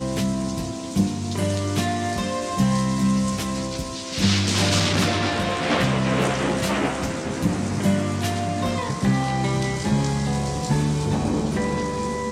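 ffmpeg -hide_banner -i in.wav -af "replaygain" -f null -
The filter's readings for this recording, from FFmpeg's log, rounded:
track_gain = +3.9 dB
track_peak = 0.323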